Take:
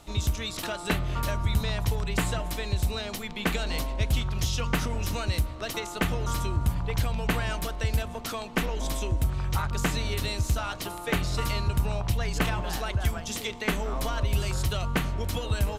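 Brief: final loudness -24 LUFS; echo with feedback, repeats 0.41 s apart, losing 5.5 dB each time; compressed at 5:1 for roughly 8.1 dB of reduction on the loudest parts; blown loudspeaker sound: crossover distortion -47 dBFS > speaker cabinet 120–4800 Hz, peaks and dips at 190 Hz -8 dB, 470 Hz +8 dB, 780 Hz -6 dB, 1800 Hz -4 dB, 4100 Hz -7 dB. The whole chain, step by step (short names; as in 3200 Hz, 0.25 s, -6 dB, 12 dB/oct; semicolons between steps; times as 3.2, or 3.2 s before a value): compressor 5:1, threshold -29 dBFS; feedback echo 0.41 s, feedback 53%, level -5.5 dB; crossover distortion -47 dBFS; speaker cabinet 120–4800 Hz, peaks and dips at 190 Hz -8 dB, 470 Hz +8 dB, 780 Hz -6 dB, 1800 Hz -4 dB, 4100 Hz -7 dB; gain +13 dB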